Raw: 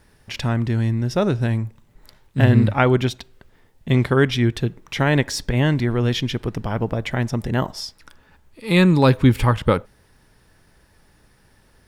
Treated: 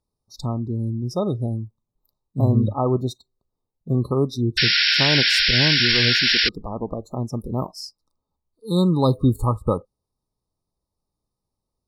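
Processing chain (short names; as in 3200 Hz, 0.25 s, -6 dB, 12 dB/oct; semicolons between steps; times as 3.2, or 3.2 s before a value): brick-wall FIR band-stop 1300–3600 Hz; painted sound noise, 4.57–6.49, 1400–5600 Hz -15 dBFS; spectral noise reduction 22 dB; gain -3.5 dB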